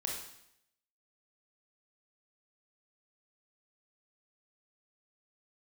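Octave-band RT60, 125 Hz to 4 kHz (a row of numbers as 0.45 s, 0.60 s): 0.75 s, 0.80 s, 0.75 s, 0.75 s, 0.75 s, 0.75 s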